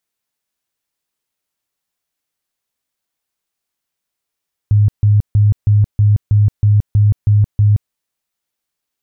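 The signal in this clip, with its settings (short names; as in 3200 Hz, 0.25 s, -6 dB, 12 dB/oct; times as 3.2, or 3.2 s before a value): tone bursts 104 Hz, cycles 18, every 0.32 s, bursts 10, -7 dBFS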